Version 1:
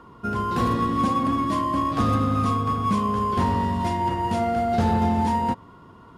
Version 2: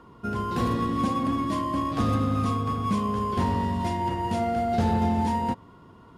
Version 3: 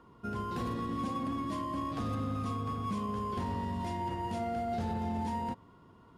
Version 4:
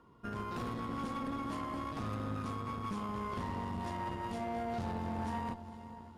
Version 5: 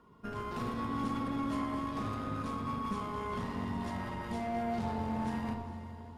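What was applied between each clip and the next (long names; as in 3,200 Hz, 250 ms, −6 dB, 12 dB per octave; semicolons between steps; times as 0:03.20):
parametric band 1,200 Hz −3.5 dB 0.85 octaves; level −2 dB
brickwall limiter −19.5 dBFS, peak gain reduction 5 dB; level −7.5 dB
feedback delay with all-pass diffusion 452 ms, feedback 55%, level −12.5 dB; tube saturation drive 32 dB, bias 0.8; level +1 dB
rectangular room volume 1,800 cubic metres, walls mixed, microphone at 1.4 metres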